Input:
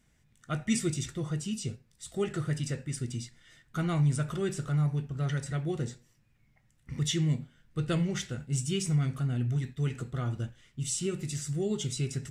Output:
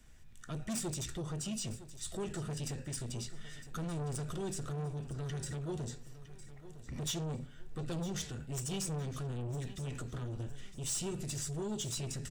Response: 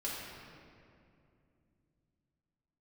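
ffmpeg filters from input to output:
-filter_complex "[0:a]acrossover=split=100|390|3300[link_01][link_02][link_03][link_04];[link_01]aemphasis=mode=reproduction:type=bsi[link_05];[link_03]acompressor=threshold=-46dB:ratio=6[link_06];[link_05][link_02][link_06][link_04]amix=inputs=4:normalize=0,asoftclip=type=tanh:threshold=-32.5dB,alimiter=level_in=13dB:limit=-24dB:level=0:latency=1:release=148,volume=-13dB,equalizer=frequency=61:width_type=o:width=2.8:gain=-9,bandreject=frequency=2100:width=13,aecho=1:1:959|1918|2877:0.178|0.064|0.023,volume=5.5dB"

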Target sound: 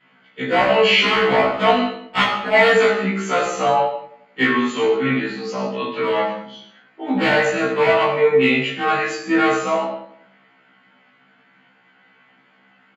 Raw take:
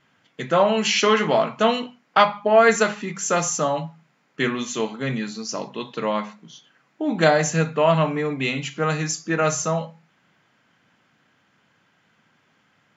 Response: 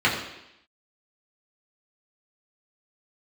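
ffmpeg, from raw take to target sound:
-filter_complex "[0:a]highpass=230,aemphasis=mode=reproduction:type=50kf,asplit=2[link_01][link_02];[link_02]alimiter=limit=-15.5dB:level=0:latency=1:release=197,volume=1dB[link_03];[link_01][link_03]amix=inputs=2:normalize=0,aeval=exprs='0.316*(abs(mod(val(0)/0.316+3,4)-2)-1)':channel_layout=same,asplit=2[link_04][link_05];[link_05]adelay=20,volume=-11dB[link_06];[link_04][link_06]amix=inputs=2:normalize=0,asplit=2[link_07][link_08];[link_08]adelay=91,lowpass=frequency=1500:poles=1,volume=-15dB,asplit=2[link_09][link_10];[link_10]adelay=91,lowpass=frequency=1500:poles=1,volume=0.54,asplit=2[link_11][link_12];[link_12]adelay=91,lowpass=frequency=1500:poles=1,volume=0.54,asplit=2[link_13][link_14];[link_14]adelay=91,lowpass=frequency=1500:poles=1,volume=0.54,asplit=2[link_15][link_16];[link_16]adelay=91,lowpass=frequency=1500:poles=1,volume=0.54[link_17];[link_07][link_09][link_11][link_13][link_15][link_17]amix=inputs=6:normalize=0[link_18];[1:a]atrim=start_sample=2205,afade=type=out:start_time=0.3:duration=0.01,atrim=end_sample=13671[link_19];[link_18][link_19]afir=irnorm=-1:irlink=0,afftfilt=real='re*1.73*eq(mod(b,3),0)':imag='im*1.73*eq(mod(b,3),0)':win_size=2048:overlap=0.75,volume=-13dB"

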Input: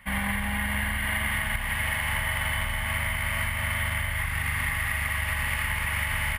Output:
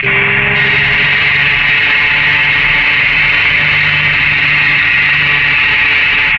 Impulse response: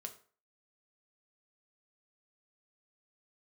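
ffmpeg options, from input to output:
-filter_complex "[0:a]aresample=16000,asoftclip=type=tanh:threshold=-28dB,aresample=44100,asplit=3[link_01][link_02][link_03];[link_02]asetrate=33038,aresample=44100,atempo=1.33484,volume=-14dB[link_04];[link_03]asetrate=88200,aresample=44100,atempo=0.5,volume=-7dB[link_05];[link_01][link_04][link_05]amix=inputs=3:normalize=0,highpass=frequency=88:poles=1,aecho=1:1:483:0.398,asplit=2[link_06][link_07];[1:a]atrim=start_sample=2205[link_08];[link_07][link_08]afir=irnorm=-1:irlink=0,volume=5dB[link_09];[link_06][link_09]amix=inputs=2:normalize=0,acompressor=mode=upward:threshold=-32dB:ratio=2.5,afwtdn=0.0251,lowpass=frequency=2600:width_type=q:width=9.3,aecho=1:1:6.9:0.69,alimiter=level_in=17.5dB:limit=-1dB:release=50:level=0:latency=1,volume=-1dB"

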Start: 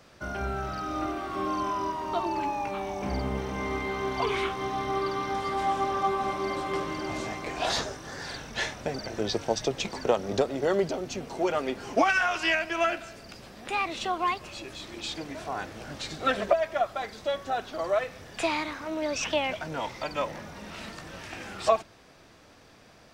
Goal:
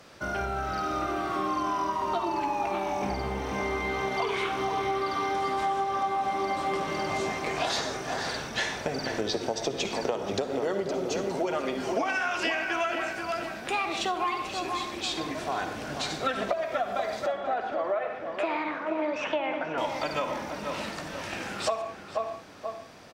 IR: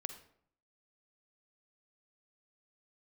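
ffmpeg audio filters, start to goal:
-filter_complex "[0:a]asettb=1/sr,asplit=3[link_01][link_02][link_03];[link_01]atrim=end=17.264[link_04];[link_02]atrim=start=17.26:end=19.78,asetpts=PTS-STARTPTS,afade=type=in:duration=0.004:curve=qsin,afade=type=out:start_time=2.516:duration=0.004:curve=qsin,acrossover=split=200 2700:gain=0.2 1 0.0708[link_05][link_06][link_07];[link_05][link_06][link_07]amix=inputs=3:normalize=0[link_08];[link_03]atrim=start=19.776[link_09];[link_04][link_08]acrossfade=duration=0.004:curve1=hsin:curve2=qsin[link_10];[link_10][link_09]acrossfade=duration=0.004:curve1=qsin:curve2=hsin,asplit=2[link_11][link_12];[link_12]adelay=481,lowpass=frequency=1900:poles=1,volume=-8dB,asplit=2[link_13][link_14];[link_14]adelay=481,lowpass=frequency=1900:poles=1,volume=0.42,asplit=2[link_15][link_16];[link_16]adelay=481,lowpass=frequency=1900:poles=1,volume=0.42,asplit=2[link_17][link_18];[link_18]adelay=481,lowpass=frequency=1900:poles=1,volume=0.42,asplit=2[link_19][link_20];[link_20]adelay=481,lowpass=frequency=1900:poles=1,volume=0.42[link_21];[link_11][link_13][link_15][link_17][link_19][link_21]amix=inputs=6:normalize=0[link_22];[1:a]atrim=start_sample=2205,afade=type=out:start_time=0.2:duration=0.01,atrim=end_sample=9261,asetrate=36162,aresample=44100[link_23];[link_22][link_23]afir=irnorm=-1:irlink=0,acompressor=threshold=-30dB:ratio=10,lowshelf=frequency=99:gain=-9,volume=5.5dB"

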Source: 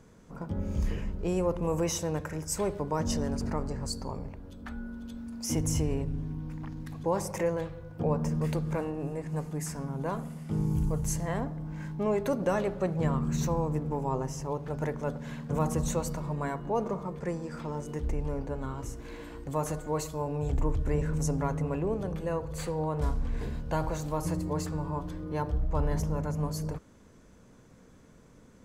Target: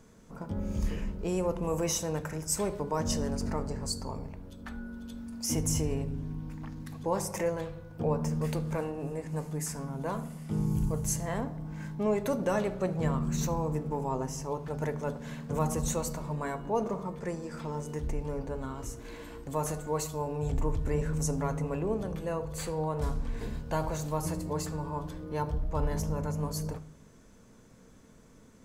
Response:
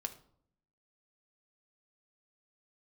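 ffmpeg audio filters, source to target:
-filter_complex "[0:a]asplit=2[link_01][link_02];[1:a]atrim=start_sample=2205,highshelf=frequency=4000:gain=7.5[link_03];[link_02][link_03]afir=irnorm=-1:irlink=0,volume=5dB[link_04];[link_01][link_04]amix=inputs=2:normalize=0,volume=-9dB"

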